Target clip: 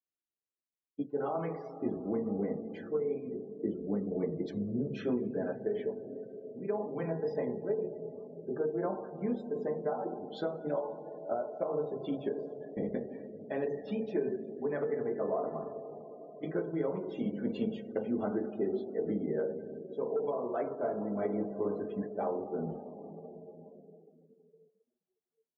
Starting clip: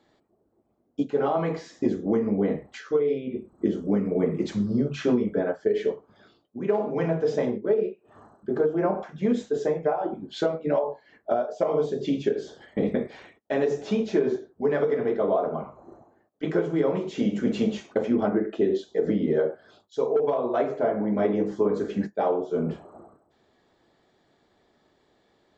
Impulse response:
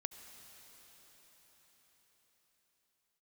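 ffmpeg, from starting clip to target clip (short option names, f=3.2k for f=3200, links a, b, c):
-filter_complex "[1:a]atrim=start_sample=2205[a];[0:a][a]afir=irnorm=-1:irlink=0,afftdn=nr=32:nf=-42,volume=-7dB"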